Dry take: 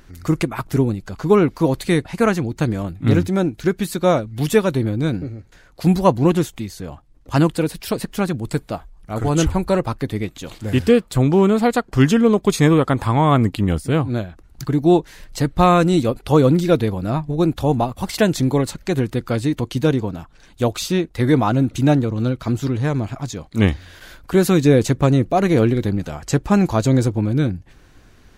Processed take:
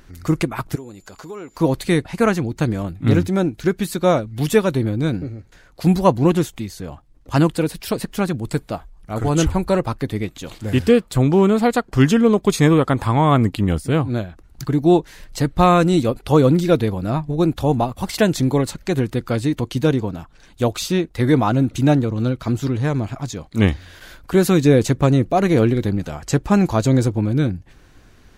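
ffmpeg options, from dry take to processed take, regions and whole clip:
-filter_complex "[0:a]asettb=1/sr,asplit=3[a][b][c];[a]atrim=end=0.754[d];[b]atrim=start=0.75:end=1.56,asetpts=PTS-STARTPTS,afade=t=in:d=0.004:c=qsin,afade=t=out:st=0.806:d=0.004:c=qsin,bass=f=250:g=-12,treble=f=4k:g=4,acompressor=threshold=-36dB:ratio=3:attack=3.2:release=140:knee=1:detection=peak,aeval=exprs='val(0)+0.00141*sin(2*PI*7100*n/s)':c=same[e];[c]atrim=start=1.556[f];[d][e]acrossfade=d=0.004:c1=hsin:c2=qsin[g];[g][f]acrossfade=d=0.004:c1=qsin:c2=hsin"

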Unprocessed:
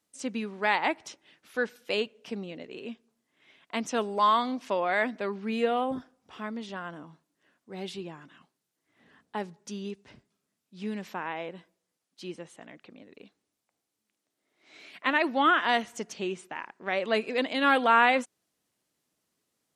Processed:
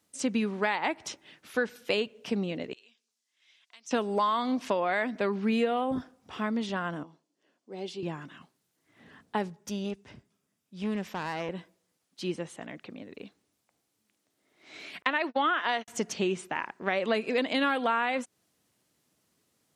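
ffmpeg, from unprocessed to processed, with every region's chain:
-filter_complex "[0:a]asettb=1/sr,asplit=3[a][b][c];[a]atrim=end=2.734[d];[b]atrim=start=2.73:end=3.91,asetpts=PTS-STARTPTS,afade=t=in:d=0.004:c=qsin,afade=t=out:st=1.176:d=0.004:c=qsin,acompressor=threshold=-48dB:ratio=2.5:attack=3.2:release=140:knee=1:detection=peak,bandpass=f=5.7k:t=q:w=1.4[e];[c]atrim=start=3.906[f];[d][e]acrossfade=d=0.004:c1=hsin:c2=qsin[g];[g][f]acrossfade=d=0.004:c1=qsin:c2=hsin,asettb=1/sr,asplit=3[h][i][j];[h]atrim=end=7.034[k];[i]atrim=start=7.03:end=8.03,asetpts=PTS-STARTPTS,afade=t=in:d=0.004:c=qsin,afade=t=out:st=0.996:d=0.004:c=qsin,highpass=360,lowpass=5.7k,equalizer=f=1.6k:w=0.64:g=-13,bandreject=f=3.8k:w=13[l];[j]atrim=start=8.026[m];[k][l]acrossfade=d=0.004:c1=hsin:c2=qsin[n];[n][m]acrossfade=d=0.004:c1=qsin:c2=hsin,asettb=1/sr,asplit=3[o][p][q];[o]atrim=end=9.484[r];[p]atrim=start=9.48:end=11.49,asetpts=PTS-STARTPTS,afade=t=in:d=0.004:c=qsin,afade=t=out:st=2.006:d=0.004:c=qsin,bandreject=f=4.2k:w=12,aeval=exprs='(tanh(44.7*val(0)+0.7)-tanh(0.7))/44.7':c=same[s];[q]atrim=start=11.486[t];[r][s]acrossfade=d=0.004:c1=hsin:c2=qsin[u];[u][t]acrossfade=d=0.004:c1=qsin:c2=hsin,asettb=1/sr,asplit=3[v][w][x];[v]atrim=end=15.024[y];[w]atrim=start=15.02:end=15.88,asetpts=PTS-STARTPTS,afade=t=in:d=0.004:c=qsin,afade=t=out:st=0.856:d=0.004:c=qsin,lowpass=5.7k,agate=range=-50dB:threshold=-33dB:ratio=16:release=100:detection=peak,bass=f=250:g=-12,treble=f=4k:g=2[z];[x]atrim=start=15.876[aa];[y][z]acrossfade=d=0.004:c1=hsin:c2=qsin[ab];[ab][aa]acrossfade=d=0.004:c1=qsin:c2=hsin,acompressor=threshold=-30dB:ratio=6,highpass=73,lowshelf=f=100:g=11.5,volume=5.5dB"

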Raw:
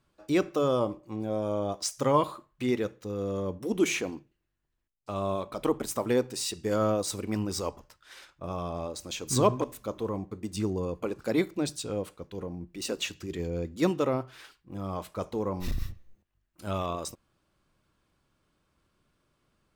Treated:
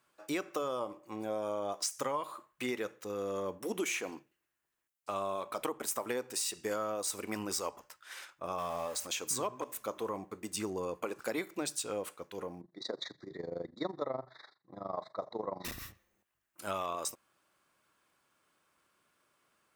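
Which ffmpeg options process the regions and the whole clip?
-filter_complex "[0:a]asettb=1/sr,asplit=3[a][b][c];[a]atrim=end=8.584[d];[b]atrim=start=8.58:end=9.07,asetpts=PTS-STARTPTS,afade=t=in:d=0.004:c=qsin,afade=t=out:st=0.486:d=0.004:c=qsin,aeval=exprs='val(0)+0.5*0.00562*sgn(val(0))':c=same,equalizer=f=350:t=o:w=0.31:g=-13[e];[c]atrim=start=9.066[f];[d][e]acrossfade=d=0.004:c1=hsin:c2=qsin[g];[g][f]acrossfade=d=0.004:c1=qsin:c2=hsin,asettb=1/sr,asplit=3[h][i][j];[h]atrim=end=12.614[k];[i]atrim=start=12.61:end=15.65,asetpts=PTS-STARTPTS,afade=t=in:d=0.004:c=qsin,afade=t=out:st=3.036:d=0.004:c=qsin,asuperstop=centerf=2800:order=8:qfactor=1.6,tremolo=f=24:d=0.857,highpass=110,equalizer=f=130:t=q:w=4:g=8,equalizer=f=650:t=q:w=4:g=6,equalizer=f=1.5k:t=q:w=4:g=-8,equalizer=f=3.8k:t=q:w=4:g=10,lowpass=f=3.9k:w=0.5412,lowpass=f=3.9k:w=1.3066[l];[j]atrim=start=15.646[m];[k][l]acrossfade=d=0.004:c1=hsin:c2=qsin[n];[n][m]acrossfade=d=0.004:c1=qsin:c2=hsin,highpass=f=1.3k:p=1,equalizer=f=4.1k:w=1:g=-7,acompressor=threshold=-38dB:ratio=12,volume=7dB"

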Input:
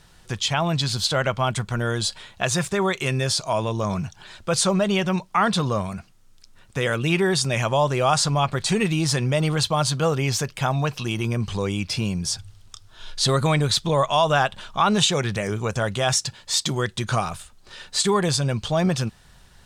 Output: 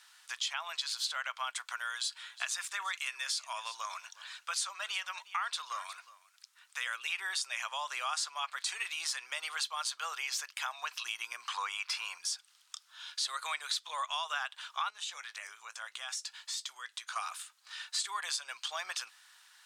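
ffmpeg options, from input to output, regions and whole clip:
-filter_complex "[0:a]asettb=1/sr,asplit=3[a][b][c];[a]atrim=end=1.754[d];[b]atrim=start=1.75:end=6.86,asetpts=PTS-STARTPTS,afade=t=in:d=0.004:c=qsin,afade=t=out:st=5.106:d=0.004:c=qsin,lowshelf=f=350:g=-11.5,aecho=1:1:360:0.0891,atrim=end_sample=225351[e];[c]atrim=start=6.856[f];[d][e]acrossfade=d=0.004:c1=hsin:c2=qsin[g];[g][f]acrossfade=d=0.004:c1=qsin:c2=hsin,asettb=1/sr,asplit=3[h][i][j];[h]atrim=end=11.454[k];[i]atrim=start=11.45:end=12.18,asetpts=PTS-STARTPTS,afade=t=in:d=0.004:c=qsin,afade=t=out:st=0.726:d=0.004:c=qsin,equalizer=f=1.1k:w=0.77:g=12,bandreject=f=630:w=10[l];[j]atrim=start=12.176[m];[k][l]acrossfade=d=0.004:c1=hsin:c2=qsin[n];[n][m]acrossfade=d=0.004:c1=qsin:c2=hsin,asettb=1/sr,asplit=3[o][p][q];[o]atrim=end=14.904[r];[p]atrim=start=14.9:end=17.16,asetpts=PTS-STARTPTS,afade=t=in:d=0.004:c=qsin,afade=t=out:st=2.256:d=0.004:c=qsin,bandreject=f=50:t=h:w=6,bandreject=f=100:t=h:w=6,bandreject=f=150:t=h:w=6,bandreject=f=200:t=h:w=6,acompressor=threshold=-36dB:ratio=2.5:attack=3.2:release=140:knee=1:detection=peak,asplit=2[s][t];[t]adelay=18,volume=-13.5dB[u];[s][u]amix=inputs=2:normalize=0,atrim=end_sample=99666[v];[q]atrim=start=17.156[w];[r][v]acrossfade=d=0.004:c1=hsin:c2=qsin[x];[x][w]acrossfade=d=0.004:c1=qsin:c2=hsin,highpass=f=1.1k:w=0.5412,highpass=f=1.1k:w=1.3066,acompressor=threshold=-32dB:ratio=3,volume=-2.5dB"

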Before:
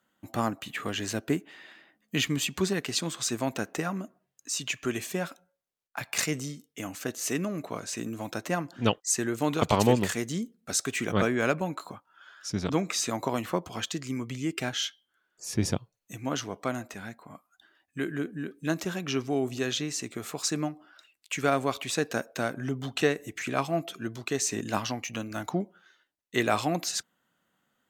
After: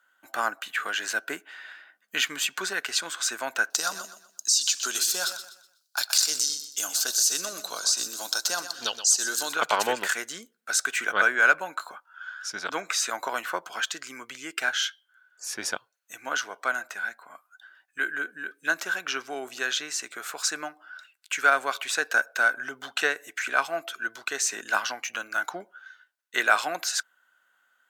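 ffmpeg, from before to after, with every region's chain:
-filter_complex "[0:a]asettb=1/sr,asplit=3[a][b][c];[a]atrim=end=3.704[d];[b]atrim=start=3.7:end=9.53,asetpts=PTS-STARTPTS,afade=t=in:d=0.004:c=qsin,afade=t=out:st=5.826:d=0.004:c=qsin,highshelf=f=3.1k:t=q:w=3:g=13.5,acompressor=threshold=-24dB:ratio=3:attack=3.2:release=140:knee=1:detection=peak,aecho=1:1:124|248|372|496:0.282|0.093|0.0307|0.0101,atrim=end_sample=257103[e];[c]atrim=start=9.526[f];[d][e]acrossfade=d=0.004:c1=hsin:c2=qsin[g];[g][f]acrossfade=d=0.004:c1=qsin:c2=hsin,highpass=740,equalizer=f=1.5k:w=5.9:g=14.5,volume=3dB"

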